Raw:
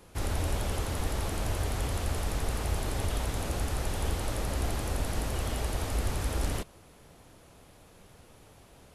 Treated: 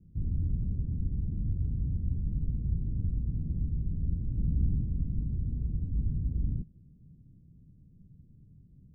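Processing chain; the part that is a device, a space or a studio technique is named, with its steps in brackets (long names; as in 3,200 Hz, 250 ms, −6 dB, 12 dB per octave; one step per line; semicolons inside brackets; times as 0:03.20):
the neighbour's flat through the wall (low-pass filter 230 Hz 24 dB per octave; parametric band 150 Hz +7 dB 0.75 octaves)
0:04.37–0:04.84: tilt shelving filter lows +3.5 dB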